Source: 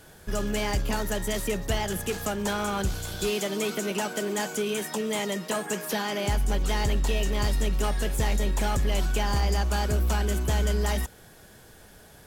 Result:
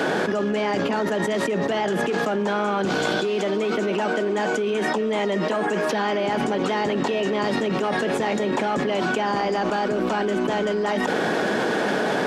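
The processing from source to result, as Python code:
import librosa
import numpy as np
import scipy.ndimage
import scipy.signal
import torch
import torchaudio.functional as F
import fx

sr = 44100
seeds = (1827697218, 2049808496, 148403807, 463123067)

y = scipy.signal.sosfilt(scipy.signal.butter(4, 220.0, 'highpass', fs=sr, output='sos'), x)
y = fx.spacing_loss(y, sr, db_at_10k=28)
y = fx.env_flatten(y, sr, amount_pct=100)
y = y * librosa.db_to_amplitude(4.0)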